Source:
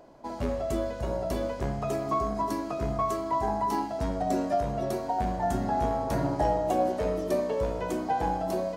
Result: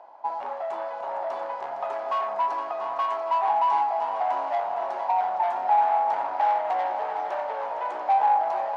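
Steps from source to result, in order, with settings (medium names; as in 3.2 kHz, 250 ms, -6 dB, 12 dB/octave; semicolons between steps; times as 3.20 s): low-pass 3 kHz 12 dB/octave; saturation -28 dBFS, distortion -11 dB; resonant high-pass 840 Hz, resonance Q 5.5; multi-head delay 230 ms, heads second and third, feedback 61%, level -10.5 dB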